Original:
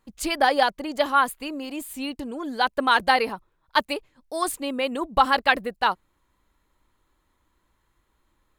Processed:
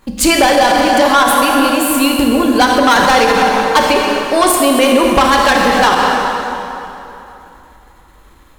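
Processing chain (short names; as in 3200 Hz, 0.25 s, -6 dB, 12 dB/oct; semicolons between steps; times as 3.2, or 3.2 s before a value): 3.79–4.5 high shelf 8500 Hz -8.5 dB; in parallel at -3 dB: level quantiser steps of 23 dB; on the sum: soft clip -20 dBFS, distortion -6 dB; plate-style reverb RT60 3 s, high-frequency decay 0.75×, DRR 0 dB; maximiser +18 dB; gain -1 dB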